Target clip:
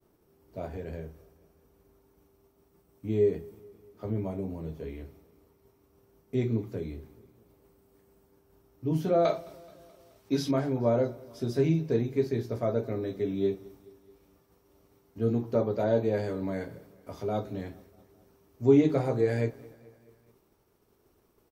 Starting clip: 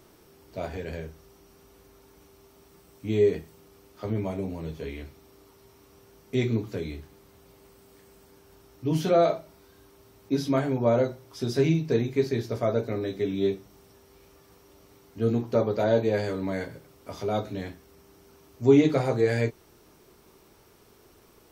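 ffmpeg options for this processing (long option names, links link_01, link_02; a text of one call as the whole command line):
ffmpeg -i in.wav -af "agate=range=-33dB:threshold=-50dB:ratio=3:detection=peak,asetnsamples=nb_out_samples=441:pad=0,asendcmd='9.25 equalizer g 3;10.51 equalizer g -7',equalizer=frequency=4200:width=0.31:gain=-10.5,aecho=1:1:214|428|642|856:0.0668|0.0401|0.0241|0.0144,volume=-2dB" out.wav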